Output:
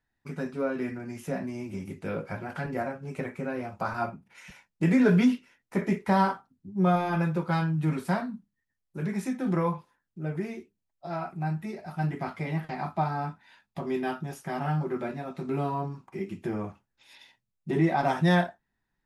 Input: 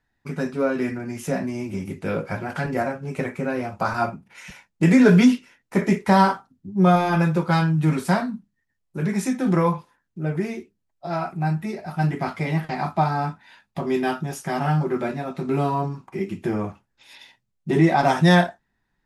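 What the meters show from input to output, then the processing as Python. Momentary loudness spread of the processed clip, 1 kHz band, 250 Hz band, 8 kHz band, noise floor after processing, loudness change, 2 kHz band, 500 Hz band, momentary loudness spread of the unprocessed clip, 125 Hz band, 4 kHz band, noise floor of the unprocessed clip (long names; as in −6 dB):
13 LU, −7.0 dB, −7.0 dB, −11.5 dB, −82 dBFS, −7.0 dB, −7.5 dB, −7.0 dB, 14 LU, −7.0 dB, −9.5 dB, −75 dBFS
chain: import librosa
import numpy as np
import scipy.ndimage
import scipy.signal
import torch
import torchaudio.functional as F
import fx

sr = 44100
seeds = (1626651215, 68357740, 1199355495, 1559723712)

y = fx.dynamic_eq(x, sr, hz=6900.0, q=0.8, threshold_db=-47.0, ratio=4.0, max_db=-6)
y = y * 10.0 ** (-7.0 / 20.0)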